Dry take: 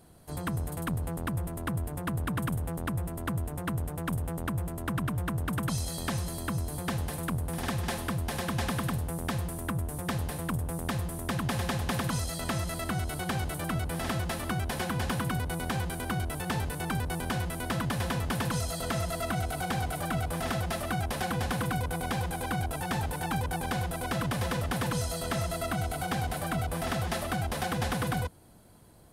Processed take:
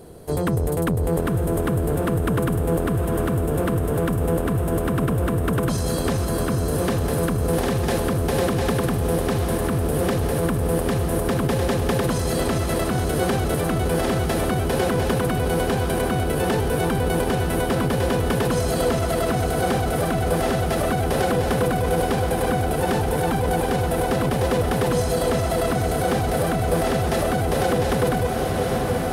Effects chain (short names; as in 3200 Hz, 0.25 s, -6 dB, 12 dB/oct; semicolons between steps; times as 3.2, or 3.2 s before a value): low shelf 200 Hz +3.5 dB; on a send: diffused feedback echo 0.856 s, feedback 70%, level -7.5 dB; on the sum: limiter -24.5 dBFS, peak gain reduction 8 dB; bell 440 Hz +14 dB 0.78 oct; gain +8.5 dB